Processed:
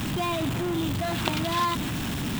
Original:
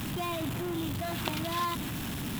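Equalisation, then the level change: peaking EQ 12 kHz -13.5 dB 0.25 oct; +6.0 dB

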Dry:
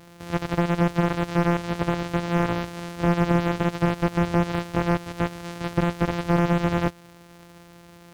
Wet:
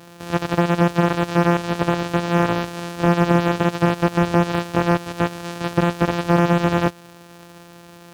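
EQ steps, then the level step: high-pass 150 Hz 6 dB/octave; band-stop 2.1 kHz, Q 14; +6.0 dB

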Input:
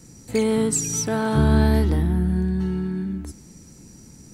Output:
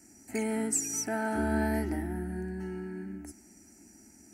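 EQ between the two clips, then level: high-pass 230 Hz 6 dB/octave; static phaser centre 730 Hz, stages 8; -3.5 dB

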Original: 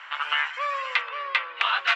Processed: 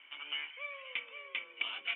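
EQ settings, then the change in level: cascade formant filter i; treble shelf 2.9 kHz -10 dB; +8.5 dB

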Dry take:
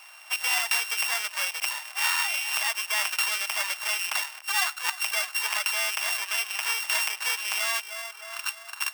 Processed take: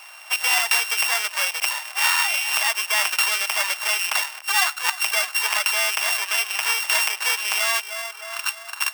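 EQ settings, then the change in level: bass shelf 410 Hz +6.5 dB; +5.5 dB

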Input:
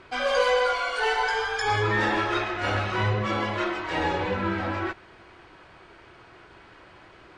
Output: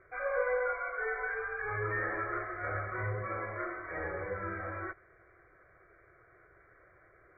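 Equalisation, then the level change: dynamic bell 1.1 kHz, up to +4 dB, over -38 dBFS, Q 2.2; brick-wall FIR low-pass 2.4 kHz; static phaser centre 900 Hz, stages 6; -8.5 dB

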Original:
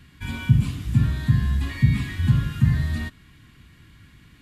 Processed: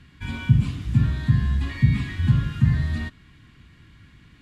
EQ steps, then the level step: distance through air 55 m; 0.0 dB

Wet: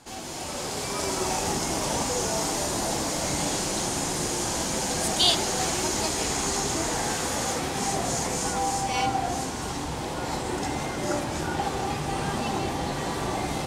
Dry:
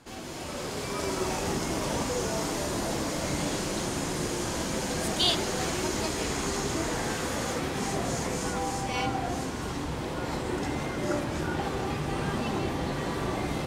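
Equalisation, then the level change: peaking EQ 800 Hz +6.5 dB 0.48 oct; peaking EQ 7.9 kHz +8 dB 2 oct; 0.0 dB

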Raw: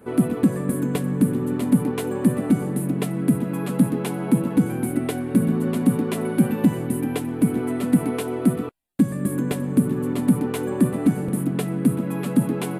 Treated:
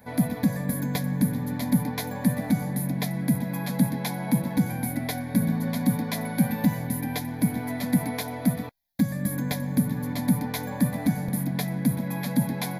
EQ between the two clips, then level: treble shelf 2.5 kHz +10 dB; static phaser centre 1.9 kHz, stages 8; 0.0 dB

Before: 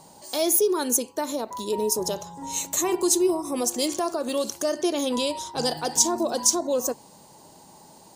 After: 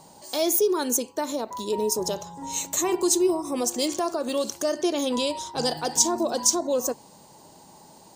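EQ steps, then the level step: peaking EQ 11 kHz -11.5 dB 0.21 oct; 0.0 dB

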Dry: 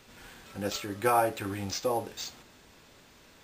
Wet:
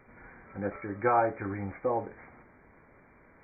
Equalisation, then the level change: brick-wall FIR low-pass 2.4 kHz; 0.0 dB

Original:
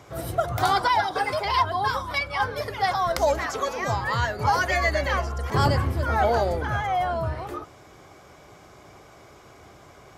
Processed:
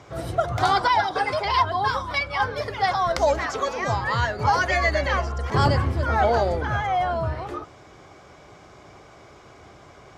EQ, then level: low-pass 6.9 kHz 12 dB/octave; +1.5 dB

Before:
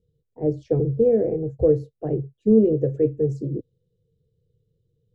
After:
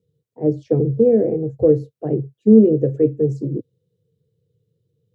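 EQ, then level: high-pass 97 Hz 24 dB/octave; dynamic bell 250 Hz, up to +5 dB, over -31 dBFS, Q 1.6; +2.5 dB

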